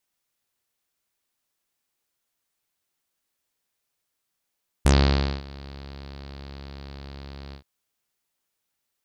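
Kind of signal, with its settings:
subtractive voice saw C#2 24 dB per octave, low-pass 4,500 Hz, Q 3.9, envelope 1.5 octaves, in 0.09 s, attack 8.8 ms, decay 0.56 s, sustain −24 dB, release 0.10 s, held 2.68 s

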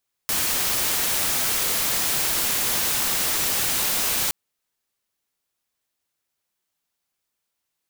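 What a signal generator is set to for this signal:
noise white, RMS −23 dBFS 4.02 s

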